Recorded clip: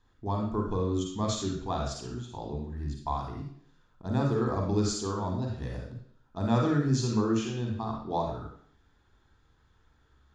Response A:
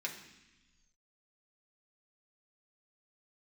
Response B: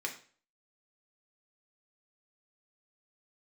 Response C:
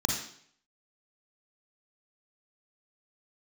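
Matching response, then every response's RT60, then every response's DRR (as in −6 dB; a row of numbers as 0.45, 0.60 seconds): C; 1.0, 0.45, 0.60 seconds; −2.0, 0.5, 0.5 decibels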